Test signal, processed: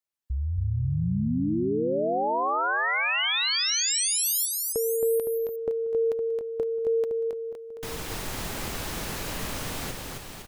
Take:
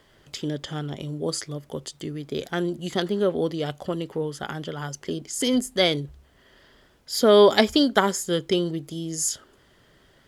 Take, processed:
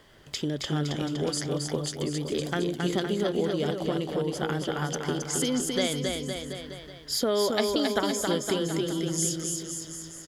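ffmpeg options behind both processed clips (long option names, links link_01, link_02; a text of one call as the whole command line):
ffmpeg -i in.wav -af "acompressor=threshold=-28dB:ratio=4,aecho=1:1:270|513|731.7|928.5|1106:0.631|0.398|0.251|0.158|0.1,volume=2dB" out.wav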